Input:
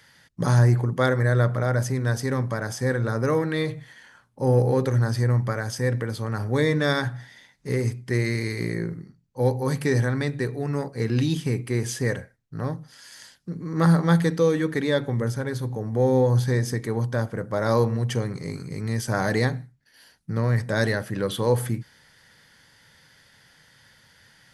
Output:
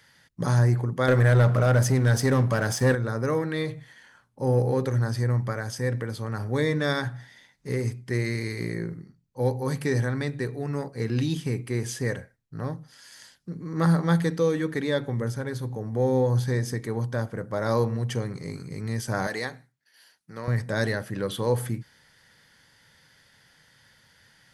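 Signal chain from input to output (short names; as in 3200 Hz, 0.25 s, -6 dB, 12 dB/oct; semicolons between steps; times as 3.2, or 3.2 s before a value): 1.08–2.95 sample leveller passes 2; 19.27–20.48 HPF 720 Hz 6 dB/oct; gain -3 dB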